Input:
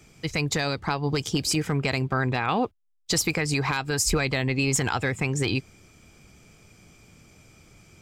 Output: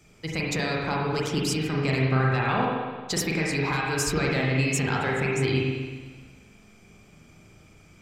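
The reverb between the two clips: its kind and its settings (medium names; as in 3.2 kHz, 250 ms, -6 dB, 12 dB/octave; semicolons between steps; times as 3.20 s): spring tank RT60 1.5 s, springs 38/43 ms, chirp 60 ms, DRR -3.5 dB; trim -4.5 dB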